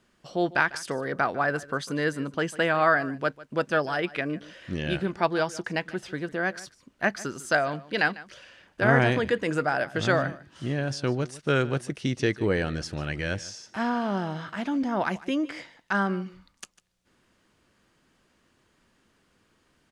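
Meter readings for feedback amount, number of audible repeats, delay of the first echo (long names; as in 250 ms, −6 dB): repeats not evenly spaced, 1, 149 ms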